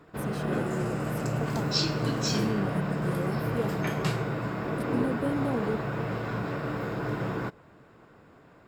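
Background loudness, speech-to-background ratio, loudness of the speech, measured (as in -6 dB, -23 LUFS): -30.5 LUFS, -4.0 dB, -34.5 LUFS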